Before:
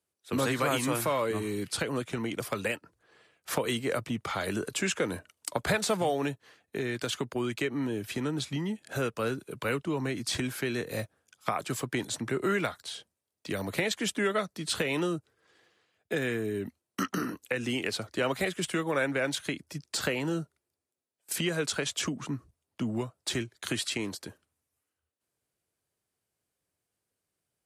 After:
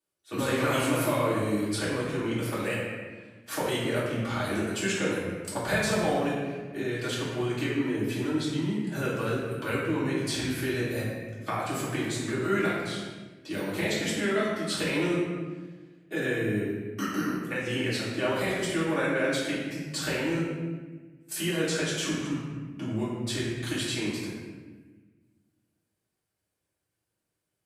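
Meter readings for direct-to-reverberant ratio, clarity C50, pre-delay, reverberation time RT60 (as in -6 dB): -10.0 dB, -0.5 dB, 3 ms, 1.3 s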